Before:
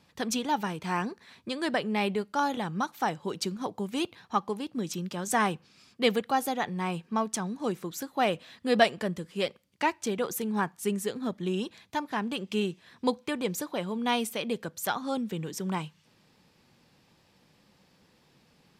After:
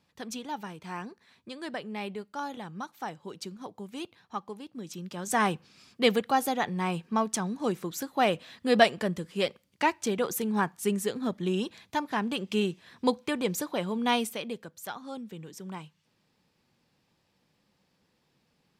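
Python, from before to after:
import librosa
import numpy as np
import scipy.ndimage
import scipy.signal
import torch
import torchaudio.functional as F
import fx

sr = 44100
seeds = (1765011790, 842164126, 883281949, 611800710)

y = fx.gain(x, sr, db=fx.line((4.82, -8.0), (5.49, 1.5), (14.15, 1.5), (14.7, -8.5)))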